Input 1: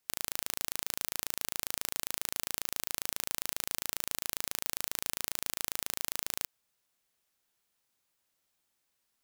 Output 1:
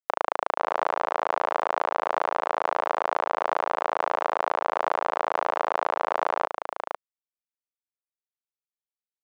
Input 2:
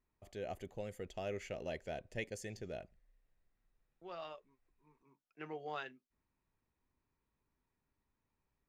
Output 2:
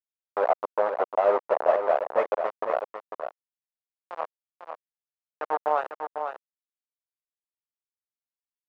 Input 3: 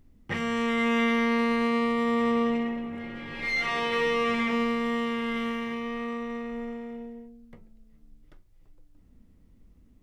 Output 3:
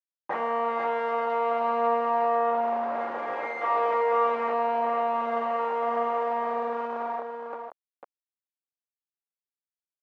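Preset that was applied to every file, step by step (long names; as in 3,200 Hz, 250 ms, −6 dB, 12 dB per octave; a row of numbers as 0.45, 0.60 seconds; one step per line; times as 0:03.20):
log-companded quantiser 2 bits
flat-topped band-pass 770 Hz, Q 1.2
on a send: single-tap delay 498 ms −7 dB
on the sum: loudness normalisation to −27 LKFS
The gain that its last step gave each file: +19.5, +14.0, +7.0 decibels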